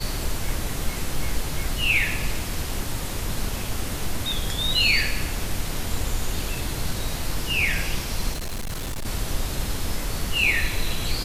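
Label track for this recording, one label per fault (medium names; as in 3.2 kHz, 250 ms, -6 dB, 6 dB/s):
8.330000	9.060000	clipped -26 dBFS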